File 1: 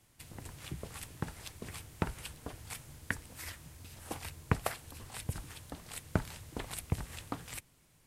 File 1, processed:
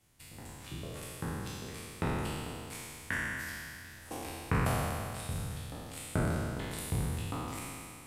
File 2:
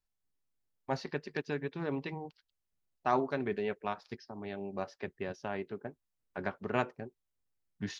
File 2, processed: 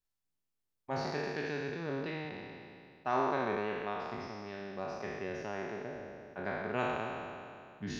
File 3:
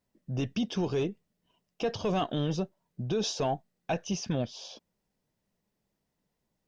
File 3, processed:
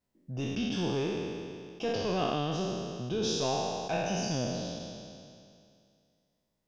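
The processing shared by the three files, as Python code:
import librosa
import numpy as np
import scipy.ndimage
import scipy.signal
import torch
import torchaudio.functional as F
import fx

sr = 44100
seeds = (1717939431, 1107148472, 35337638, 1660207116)

y = fx.spec_trails(x, sr, decay_s=2.4)
y = y * librosa.db_to_amplitude(-5.0)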